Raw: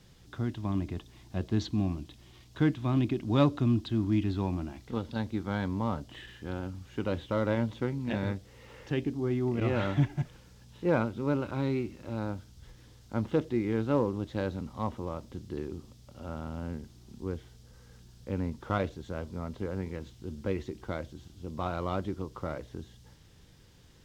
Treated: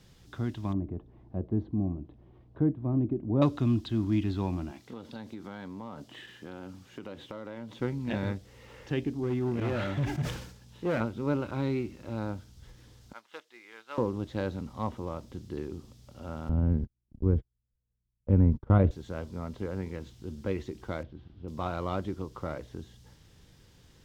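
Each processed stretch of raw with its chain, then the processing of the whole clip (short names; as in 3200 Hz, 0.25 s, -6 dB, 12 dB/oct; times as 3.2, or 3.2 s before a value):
0.73–3.42 Chebyshev low-pass 530 Hz + mismatched tape noise reduction encoder only
4.71–7.8 HPF 160 Hz + compressor, threshold -37 dBFS
9.23–11.01 hard clip -25 dBFS + HPF 43 Hz + sustainer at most 72 dB/s
13.13–13.98 HPF 1300 Hz + upward expander, over -59 dBFS
16.49–18.91 gate -45 dBFS, range -43 dB + LPF 3000 Hz 6 dB/oct + tilt -4 dB/oct
21.03–21.48 median filter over 5 samples + air absorption 320 m
whole clip: dry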